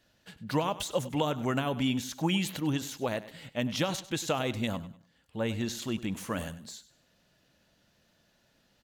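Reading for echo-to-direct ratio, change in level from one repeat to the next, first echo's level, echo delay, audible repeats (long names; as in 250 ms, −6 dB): −15.5 dB, −10.0 dB, −16.0 dB, 99 ms, 2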